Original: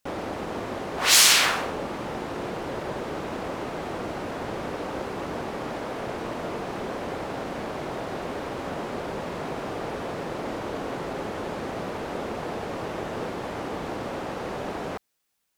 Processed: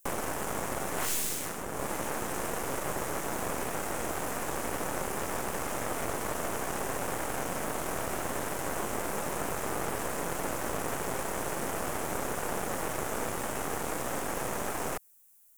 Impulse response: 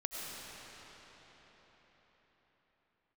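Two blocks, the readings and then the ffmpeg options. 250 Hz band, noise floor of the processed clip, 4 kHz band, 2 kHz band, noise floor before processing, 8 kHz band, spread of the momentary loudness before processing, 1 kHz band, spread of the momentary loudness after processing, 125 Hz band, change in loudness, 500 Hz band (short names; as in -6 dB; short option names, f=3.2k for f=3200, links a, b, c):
-5.0 dB, -37 dBFS, -15.5 dB, -6.0 dB, -35 dBFS, -6.5 dB, 6 LU, -2.5 dB, 1 LU, -3.5 dB, -6.0 dB, -4.0 dB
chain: -filter_complex "[0:a]aexciter=amount=10.7:drive=7.9:freq=6.4k,acrossover=split=200|520[a][b][c];[a]acompressor=threshold=-50dB:ratio=4[d];[b]acompressor=threshold=-43dB:ratio=4[e];[c]acompressor=threshold=-31dB:ratio=4[f];[d][e][f]amix=inputs=3:normalize=0,highshelf=f=2.7k:g=-9.5,aeval=exprs='0.1*(cos(1*acos(clip(val(0)/0.1,-1,1)))-cos(1*PI/2))+0.0316*(cos(6*acos(clip(val(0)/0.1,-1,1)))-cos(6*PI/2))':c=same"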